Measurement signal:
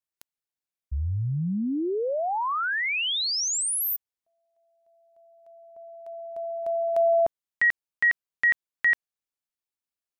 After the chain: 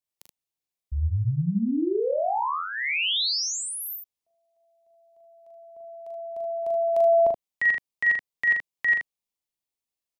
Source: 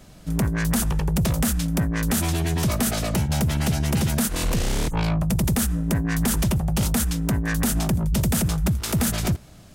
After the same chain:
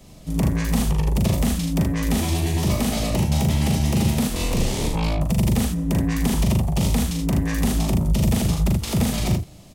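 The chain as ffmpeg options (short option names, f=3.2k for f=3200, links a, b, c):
-filter_complex "[0:a]equalizer=f=1.5k:t=o:w=0.48:g=-11,acrossover=split=300|5000[a][b][c];[c]acompressor=threshold=-37dB:ratio=6:attack=15:release=38:detection=rms[d];[a][b][d]amix=inputs=3:normalize=0,aecho=1:1:40|50|77:0.631|0.106|0.562"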